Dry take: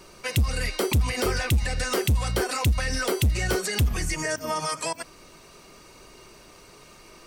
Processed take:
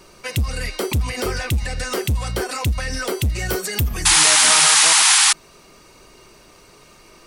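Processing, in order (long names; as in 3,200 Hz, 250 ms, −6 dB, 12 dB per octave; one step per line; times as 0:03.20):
0:03.38–0:04.03: parametric band 15,000 Hz +13.5 dB 0.46 octaves
0:04.05–0:05.33: sound drawn into the spectrogram noise 750–11,000 Hz −15 dBFS
level +1.5 dB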